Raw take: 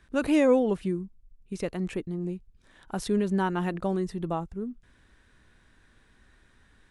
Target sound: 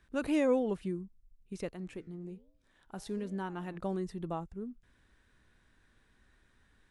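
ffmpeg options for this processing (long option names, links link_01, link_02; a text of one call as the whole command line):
ffmpeg -i in.wav -filter_complex "[0:a]asettb=1/sr,asplit=3[link_01][link_02][link_03];[link_01]atrim=end=1.724[link_04];[link_02]atrim=start=1.72:end=3.77,asetpts=PTS-STARTPTS,afade=type=in:duration=0.004:curve=qsin,afade=type=out:start_time=2.046:duration=0.004:curve=qsin,flanger=delay=8.5:depth=7.7:regen=-90:speed=1.2:shape=sinusoidal[link_05];[link_03]atrim=start=3.766[link_06];[link_04][link_05]acrossfade=duration=0.004:curve1=hsin:curve2=qsin[link_07];[link_07][link_06]acrossfade=duration=0.004:curve1=qsin:curve2=hsin,volume=-7dB" out.wav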